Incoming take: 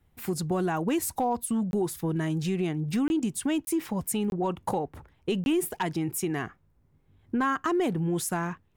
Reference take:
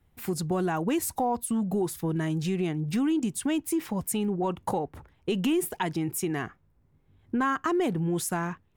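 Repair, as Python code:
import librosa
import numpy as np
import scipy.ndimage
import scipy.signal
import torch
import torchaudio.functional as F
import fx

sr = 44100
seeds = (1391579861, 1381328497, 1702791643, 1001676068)

y = fx.fix_declip(x, sr, threshold_db=-19.0)
y = fx.fix_interpolate(y, sr, at_s=(1.71, 3.08, 3.65, 4.3, 5.44), length_ms=21.0)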